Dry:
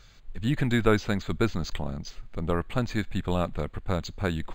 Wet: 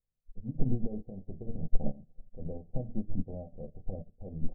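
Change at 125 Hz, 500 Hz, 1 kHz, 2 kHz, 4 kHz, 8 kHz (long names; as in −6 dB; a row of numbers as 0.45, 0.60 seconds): −8.5 dB, −14.0 dB, −21.5 dB, below −40 dB, below −40 dB, below −35 dB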